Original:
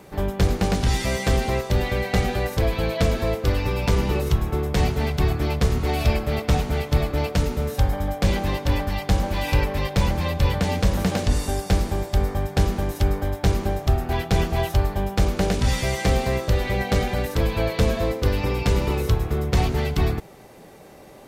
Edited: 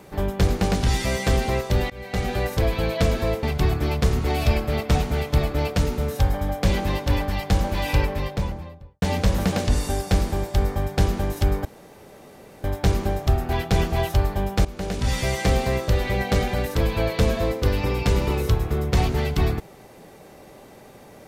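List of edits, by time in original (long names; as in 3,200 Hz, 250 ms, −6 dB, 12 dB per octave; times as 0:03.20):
0:01.90–0:02.39: fade in, from −24 dB
0:03.43–0:05.02: remove
0:09.49–0:10.61: fade out and dull
0:13.24: splice in room tone 0.99 s
0:15.25–0:15.84: fade in, from −15.5 dB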